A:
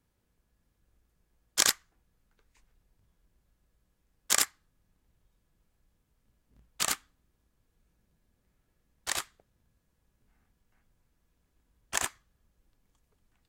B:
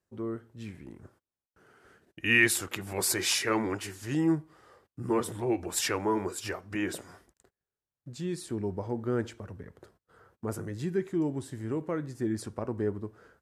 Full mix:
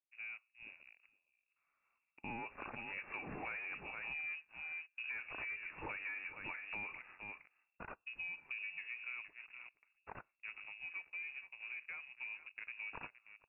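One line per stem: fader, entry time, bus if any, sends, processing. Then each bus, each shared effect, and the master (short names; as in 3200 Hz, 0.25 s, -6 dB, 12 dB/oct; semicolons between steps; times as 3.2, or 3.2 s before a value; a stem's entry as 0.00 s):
-19.0 dB, 1.00 s, no send, echo send -22.5 dB, band shelf 630 Hz -9 dB
2.51 s -18 dB -> 3.06 s -9.5 dB -> 8.62 s -9.5 dB -> 9.32 s -19.5 dB, 0.00 s, no send, echo send -13.5 dB, tube stage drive 19 dB, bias 0.45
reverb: off
echo: echo 0.465 s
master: sample leveller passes 2; inverted band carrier 2700 Hz; compressor 6:1, threshold -42 dBFS, peak gain reduction 12.5 dB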